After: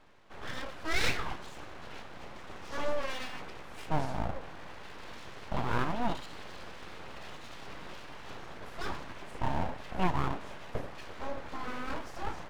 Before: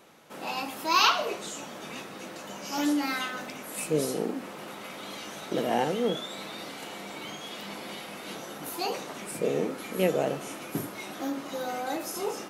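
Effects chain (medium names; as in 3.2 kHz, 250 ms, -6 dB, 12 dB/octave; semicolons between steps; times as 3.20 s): tape spacing loss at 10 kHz 27 dB; full-wave rectifier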